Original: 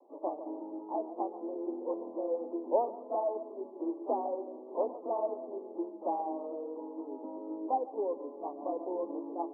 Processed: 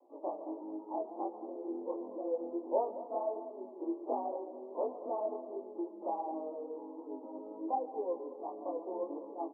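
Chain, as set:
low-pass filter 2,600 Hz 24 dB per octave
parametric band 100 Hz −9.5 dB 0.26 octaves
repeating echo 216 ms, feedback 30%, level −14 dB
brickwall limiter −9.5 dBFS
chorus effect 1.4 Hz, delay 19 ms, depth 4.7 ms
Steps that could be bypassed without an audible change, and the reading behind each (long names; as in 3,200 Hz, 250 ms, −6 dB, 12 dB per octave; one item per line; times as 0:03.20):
low-pass filter 2,600 Hz: nothing at its input above 1,100 Hz
parametric band 100 Hz: nothing at its input below 200 Hz
brickwall limiter −9.5 dBFS: peak of its input −16.5 dBFS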